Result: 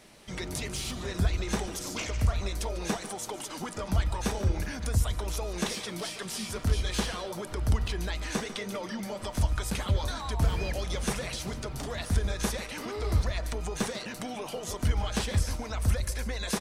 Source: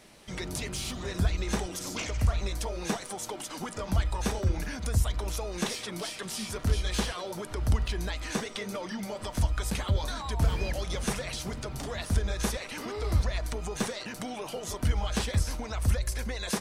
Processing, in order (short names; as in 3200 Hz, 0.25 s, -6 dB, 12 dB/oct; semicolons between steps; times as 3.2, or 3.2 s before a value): outdoor echo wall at 25 m, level -13 dB